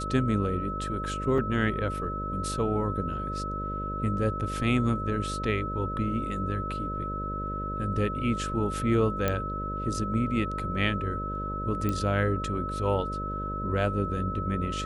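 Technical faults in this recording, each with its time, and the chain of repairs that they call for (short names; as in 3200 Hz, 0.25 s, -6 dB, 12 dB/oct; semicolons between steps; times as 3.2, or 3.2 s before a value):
buzz 50 Hz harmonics 12 -35 dBFS
tone 1300 Hz -33 dBFS
1.38 gap 3.4 ms
9.28 pop -12 dBFS
11.89 pop -16 dBFS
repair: de-click; de-hum 50 Hz, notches 12; notch 1300 Hz, Q 30; interpolate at 1.38, 3.4 ms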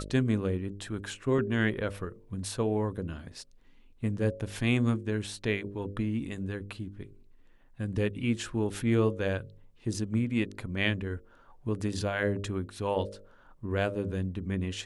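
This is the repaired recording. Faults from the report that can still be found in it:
none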